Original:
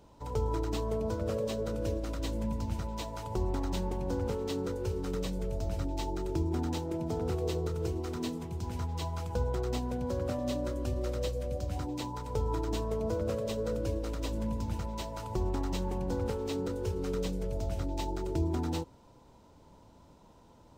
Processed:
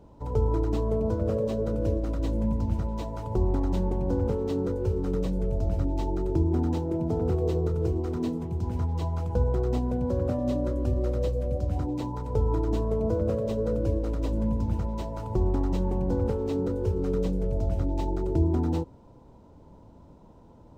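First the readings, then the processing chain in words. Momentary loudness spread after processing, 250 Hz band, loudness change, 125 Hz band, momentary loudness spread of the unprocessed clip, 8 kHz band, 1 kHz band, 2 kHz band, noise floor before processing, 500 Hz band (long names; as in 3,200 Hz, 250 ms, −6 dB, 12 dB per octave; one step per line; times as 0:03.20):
4 LU, +6.5 dB, +6.5 dB, +7.5 dB, 4 LU, can't be measured, +2.0 dB, −3.0 dB, −58 dBFS, +5.5 dB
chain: tilt shelving filter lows +7.5 dB, about 1,200 Hz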